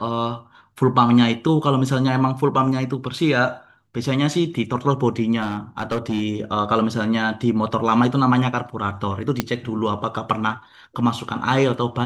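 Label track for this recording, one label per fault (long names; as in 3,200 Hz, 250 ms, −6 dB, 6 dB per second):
5.420000	6.230000	clipping −18 dBFS
9.400000	9.400000	click −4 dBFS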